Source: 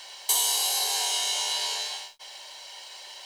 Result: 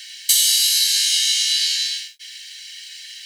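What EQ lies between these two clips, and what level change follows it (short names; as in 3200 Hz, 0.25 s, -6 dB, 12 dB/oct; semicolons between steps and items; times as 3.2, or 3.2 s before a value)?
steep high-pass 1600 Hz 96 dB/oct; dynamic EQ 4600 Hz, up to +5 dB, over -39 dBFS, Q 1.8; +7.0 dB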